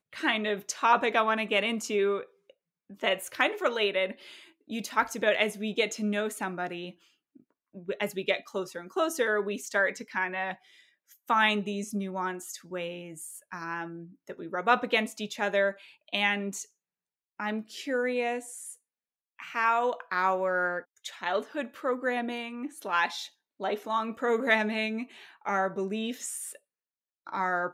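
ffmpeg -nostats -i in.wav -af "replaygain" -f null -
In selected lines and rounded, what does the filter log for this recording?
track_gain = +9.0 dB
track_peak = 0.221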